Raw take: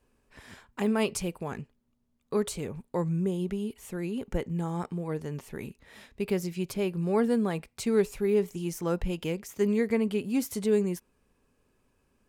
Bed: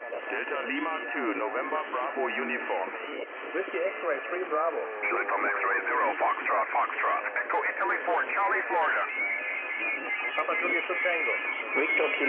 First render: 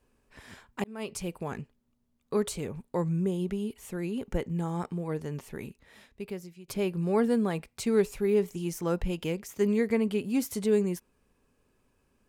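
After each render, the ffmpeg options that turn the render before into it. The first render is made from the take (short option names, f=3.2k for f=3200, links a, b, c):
-filter_complex "[0:a]asplit=3[a][b][c];[a]atrim=end=0.84,asetpts=PTS-STARTPTS,afade=t=out:st=0.836:d=0.004:c=hsin[d];[b]atrim=start=0.84:end=6.68,asetpts=PTS-STARTPTS,afade=t=in:d=0.56,afade=t=out:st=4.62:d=1.22:silence=0.0891251[e];[c]atrim=start=6.68,asetpts=PTS-STARTPTS,afade=t=in:d=0.004:c=hsin:silence=0.0891251[f];[d][e][f]concat=n=3:v=0:a=1"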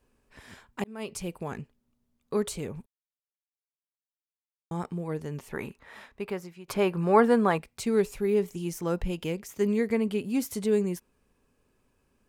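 -filter_complex "[0:a]asettb=1/sr,asplit=3[a][b][c];[a]atrim=end=5.514[d];[b]atrim=start=5.51:end=7.58,asetpts=PTS-STARTPTS,afade=t=in:d=0.004:c=qsin,afade=t=out:st=2.066:d=0.004:c=qsin,equalizer=f=1.1k:w=0.61:g=13[e];[c]atrim=start=7.576[f];[d][e]acrossfade=d=0.004:c1=hsin:c2=qsin[g];[g][f]acrossfade=d=0.004:c1=qsin:c2=hsin,asplit=3[h][i][j];[h]atrim=end=2.86,asetpts=PTS-STARTPTS,afade=t=out:st=2.856:d=0.004:c=hsin[k];[i]atrim=start=2.86:end=4.71,asetpts=PTS-STARTPTS,volume=0[l];[j]atrim=start=4.71,asetpts=PTS-STARTPTS,afade=t=in:d=0.004:c=hsin[m];[k][l][m]concat=n=3:v=0:a=1"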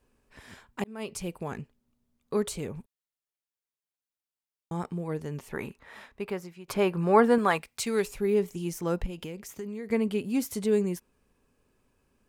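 -filter_complex "[0:a]asettb=1/sr,asplit=3[a][b][c];[a]atrim=end=7.384[d];[b]atrim=start=7.38:end=8.08,asetpts=PTS-STARTPTS,afade=t=in:d=0.004:c=qsin,afade=t=out:st=0.696:d=0.004:c=qsin,tiltshelf=f=770:g=-5.5[e];[c]atrim=start=8.076[f];[d][e]acrossfade=d=0.004:c1=hsin:c2=qsin[g];[g][f]acrossfade=d=0.004:c1=qsin:c2=hsin,asettb=1/sr,asplit=3[h][i][j];[h]atrim=end=9.064[k];[i]atrim=start=9.06:end=9.92,asetpts=PTS-STARTPTS,afade=t=in:d=0.004:c=qsin,afade=t=out:st=0.856:d=0.004:c=qsin,acompressor=threshold=-34dB:ratio=6:attack=3.2:release=140:knee=1:detection=peak[l];[j]atrim=start=9.916[m];[k][l]acrossfade=d=0.004:c1=hsin:c2=qsin[n];[n][m]acrossfade=d=0.004:c1=qsin:c2=hsin"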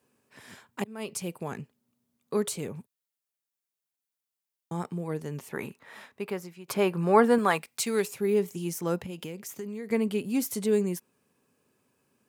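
-af "highpass=f=110:w=0.5412,highpass=f=110:w=1.3066,highshelf=f=7.4k:g=6.5"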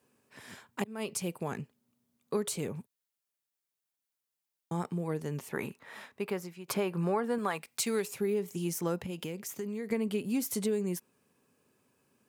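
-af "acompressor=threshold=-27dB:ratio=8"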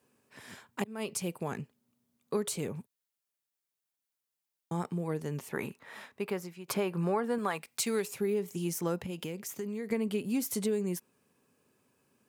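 -af anull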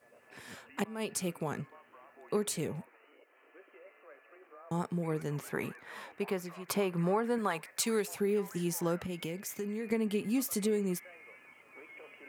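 -filter_complex "[1:a]volume=-26dB[a];[0:a][a]amix=inputs=2:normalize=0"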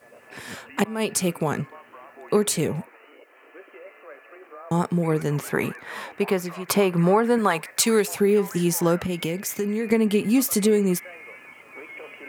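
-af "volume=11.5dB"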